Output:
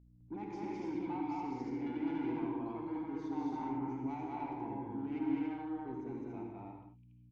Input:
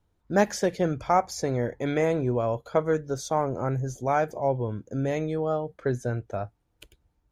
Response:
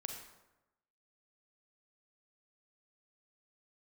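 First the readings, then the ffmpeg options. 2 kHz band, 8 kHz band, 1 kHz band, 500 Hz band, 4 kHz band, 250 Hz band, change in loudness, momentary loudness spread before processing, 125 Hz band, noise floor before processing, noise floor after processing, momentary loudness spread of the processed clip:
-18.0 dB, under -30 dB, -13.5 dB, -19.5 dB, under -15 dB, -5.5 dB, -12.5 dB, 6 LU, -19.0 dB, -72 dBFS, -60 dBFS, 9 LU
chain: -filter_complex "[0:a]lowpass=4.6k,bandreject=f=60:t=h:w=6,bandreject=f=120:t=h:w=6,bandreject=f=180:t=h:w=6,bandreject=f=240:t=h:w=6,bandreject=f=300:t=h:w=6,bandreject=f=360:t=h:w=6,bandreject=f=420:t=h:w=6,bandreject=f=480:t=h:w=6,agate=range=-22dB:threshold=-44dB:ratio=16:detection=peak,alimiter=limit=-21dB:level=0:latency=1:release=13,asplit=3[a][b][c];[a]bandpass=f=300:t=q:w=8,volume=0dB[d];[b]bandpass=f=870:t=q:w=8,volume=-6dB[e];[c]bandpass=f=2.24k:t=q:w=8,volume=-9dB[f];[d][e][f]amix=inputs=3:normalize=0,asoftclip=type=tanh:threshold=-37.5dB,aeval=exprs='val(0)+0.000891*(sin(2*PI*60*n/s)+sin(2*PI*2*60*n/s)/2+sin(2*PI*3*60*n/s)/3+sin(2*PI*4*60*n/s)/4+sin(2*PI*5*60*n/s)/5)':c=same,aecho=1:1:160.3|207|285.7:0.316|0.891|0.794[g];[1:a]atrim=start_sample=2205,afade=t=out:st=0.2:d=0.01,atrim=end_sample=9261,asetrate=29988,aresample=44100[h];[g][h]afir=irnorm=-1:irlink=0,volume=2dB"

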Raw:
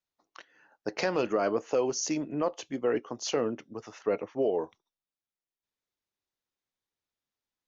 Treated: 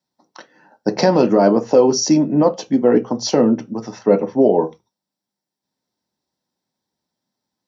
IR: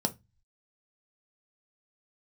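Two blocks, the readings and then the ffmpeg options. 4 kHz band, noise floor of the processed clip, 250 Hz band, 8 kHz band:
+12.5 dB, -85 dBFS, +18.0 dB, n/a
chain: -filter_complex "[1:a]atrim=start_sample=2205,afade=t=out:st=0.19:d=0.01,atrim=end_sample=8820[a];[0:a][a]afir=irnorm=-1:irlink=0,volume=4.5dB"

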